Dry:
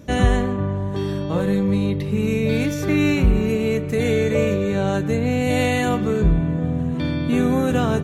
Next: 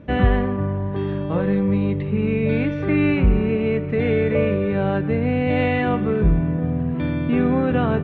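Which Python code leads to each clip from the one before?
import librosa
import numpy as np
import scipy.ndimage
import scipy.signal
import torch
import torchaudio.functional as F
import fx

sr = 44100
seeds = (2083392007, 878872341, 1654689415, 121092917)

y = scipy.signal.sosfilt(scipy.signal.butter(4, 2800.0, 'lowpass', fs=sr, output='sos'), x)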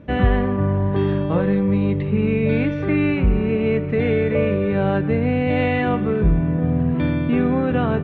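y = fx.rider(x, sr, range_db=10, speed_s=0.5)
y = F.gain(torch.from_numpy(y), 1.0).numpy()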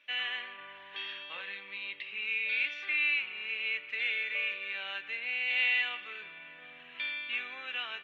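y = fx.highpass_res(x, sr, hz=2700.0, q=2.5)
y = F.gain(torch.from_numpy(y), -3.0).numpy()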